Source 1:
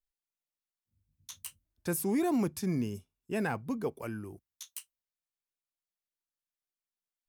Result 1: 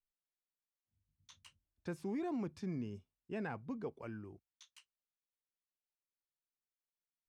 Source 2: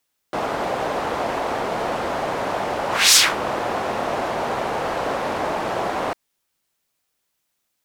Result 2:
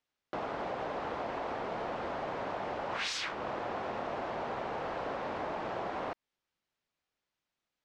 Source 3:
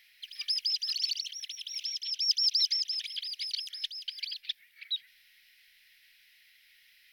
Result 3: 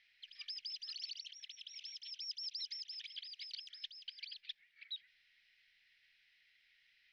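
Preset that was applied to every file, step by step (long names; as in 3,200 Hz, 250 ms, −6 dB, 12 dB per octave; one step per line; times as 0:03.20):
downward compressor 2 to 1, threshold −30 dBFS
high-frequency loss of the air 140 metres
level −7 dB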